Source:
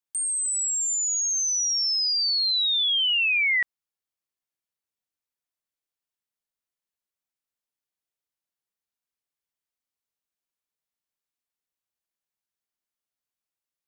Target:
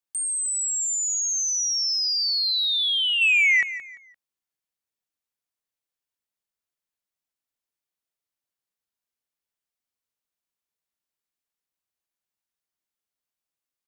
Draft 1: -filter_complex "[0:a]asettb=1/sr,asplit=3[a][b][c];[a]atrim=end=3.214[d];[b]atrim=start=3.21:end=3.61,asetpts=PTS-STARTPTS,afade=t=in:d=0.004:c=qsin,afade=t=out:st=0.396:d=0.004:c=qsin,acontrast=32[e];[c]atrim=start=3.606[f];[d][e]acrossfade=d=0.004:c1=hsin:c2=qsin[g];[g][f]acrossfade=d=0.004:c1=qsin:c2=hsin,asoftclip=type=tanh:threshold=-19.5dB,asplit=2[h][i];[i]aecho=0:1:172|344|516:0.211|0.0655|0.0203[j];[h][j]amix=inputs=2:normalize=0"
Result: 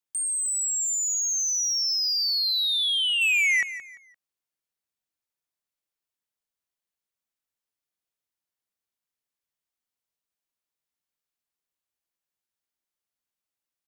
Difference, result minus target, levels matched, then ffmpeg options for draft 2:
soft clip: distortion +10 dB
-filter_complex "[0:a]asettb=1/sr,asplit=3[a][b][c];[a]atrim=end=3.214[d];[b]atrim=start=3.21:end=3.61,asetpts=PTS-STARTPTS,afade=t=in:d=0.004:c=qsin,afade=t=out:st=0.396:d=0.004:c=qsin,acontrast=32[e];[c]atrim=start=3.606[f];[d][e]acrossfade=d=0.004:c1=hsin:c2=qsin[g];[g][f]acrossfade=d=0.004:c1=qsin:c2=hsin,asoftclip=type=tanh:threshold=-12.5dB,asplit=2[h][i];[i]aecho=0:1:172|344|516:0.211|0.0655|0.0203[j];[h][j]amix=inputs=2:normalize=0"

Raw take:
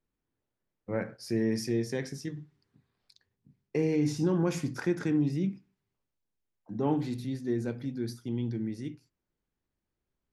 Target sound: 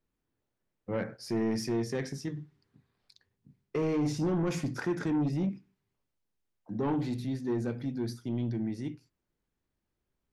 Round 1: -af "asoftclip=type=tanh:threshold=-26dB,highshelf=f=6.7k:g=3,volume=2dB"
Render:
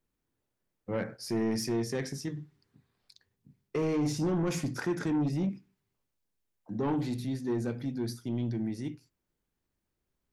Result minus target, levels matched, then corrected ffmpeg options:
8000 Hz band +4.0 dB
-af "asoftclip=type=tanh:threshold=-26dB,highshelf=f=6.7k:g=-5,volume=2dB"

